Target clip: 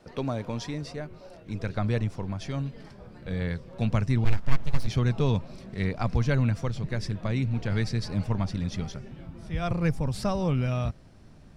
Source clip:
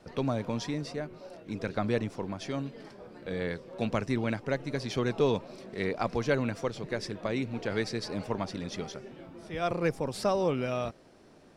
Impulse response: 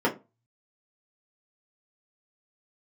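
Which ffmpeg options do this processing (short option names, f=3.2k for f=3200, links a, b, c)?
-filter_complex "[0:a]asplit=3[a][b][c];[a]afade=t=out:st=4.24:d=0.02[d];[b]aeval=exprs='abs(val(0))':c=same,afade=t=in:st=4.24:d=0.02,afade=t=out:st=4.86:d=0.02[e];[c]afade=t=in:st=4.86:d=0.02[f];[d][e][f]amix=inputs=3:normalize=0,asubboost=boost=8.5:cutoff=130"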